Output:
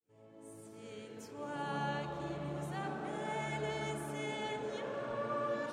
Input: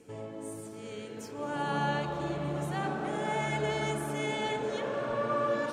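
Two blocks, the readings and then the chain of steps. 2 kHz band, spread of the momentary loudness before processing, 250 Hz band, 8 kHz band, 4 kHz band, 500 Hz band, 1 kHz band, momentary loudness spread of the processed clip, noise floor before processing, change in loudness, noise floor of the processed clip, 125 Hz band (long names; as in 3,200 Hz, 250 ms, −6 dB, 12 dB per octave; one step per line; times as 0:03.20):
−7.0 dB, 12 LU, −7.0 dB, −7.5 dB, −7.0 dB, −7.0 dB, −7.0 dB, 13 LU, −44 dBFS, −6.5 dB, −59 dBFS, −7.0 dB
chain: fade in at the beginning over 0.86 s
pitch vibrato 0.37 Hz 11 cents
level −7 dB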